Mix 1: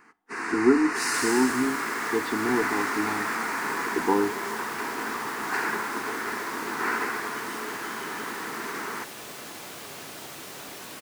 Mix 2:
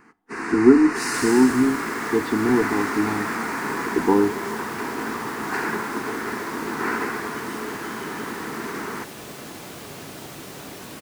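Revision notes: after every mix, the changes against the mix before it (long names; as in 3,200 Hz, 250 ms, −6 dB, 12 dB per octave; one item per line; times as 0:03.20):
master: add low-shelf EQ 390 Hz +11 dB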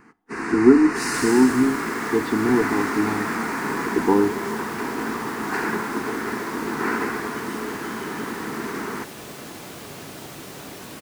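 first sound: add low-shelf EQ 260 Hz +5.5 dB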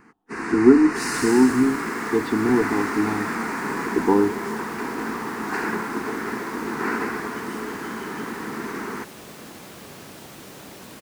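reverb: off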